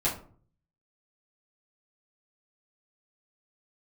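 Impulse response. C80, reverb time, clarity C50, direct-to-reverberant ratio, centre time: 13.0 dB, 0.45 s, 8.5 dB, -7.5 dB, 24 ms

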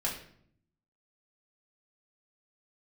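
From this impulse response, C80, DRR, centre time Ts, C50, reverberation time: 10.0 dB, -4.0 dB, 28 ms, 6.5 dB, 0.60 s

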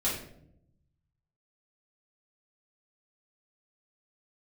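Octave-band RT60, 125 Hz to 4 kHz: 1.6 s, 1.2 s, 0.85 s, 0.60 s, 0.50 s, 0.45 s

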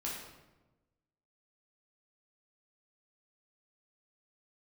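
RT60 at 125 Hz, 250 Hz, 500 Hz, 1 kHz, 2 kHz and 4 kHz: 1.4 s, 1.4 s, 1.2 s, 1.0 s, 0.85 s, 0.70 s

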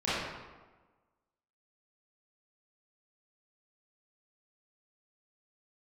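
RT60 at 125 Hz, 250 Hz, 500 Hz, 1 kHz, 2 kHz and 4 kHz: 1.2 s, 1.4 s, 1.3 s, 1.3 s, 1.0 s, 0.80 s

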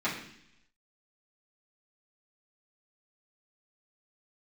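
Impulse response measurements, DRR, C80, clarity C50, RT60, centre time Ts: -10.5 dB, 9.0 dB, 6.0 dB, 0.70 s, 33 ms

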